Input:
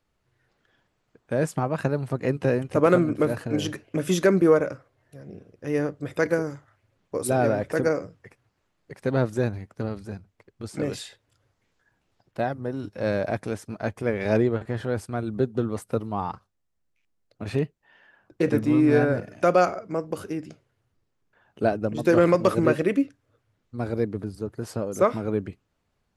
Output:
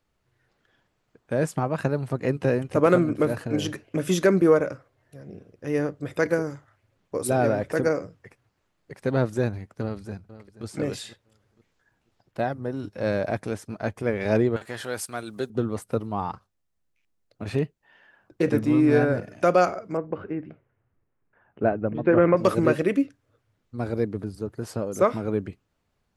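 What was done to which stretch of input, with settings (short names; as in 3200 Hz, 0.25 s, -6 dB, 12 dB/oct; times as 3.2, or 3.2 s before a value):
9.81–10.65 echo throw 0.48 s, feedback 30%, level -15.5 dB
14.56–15.5 tilt +4 dB/oct
19.97–22.37 LPF 2300 Hz 24 dB/oct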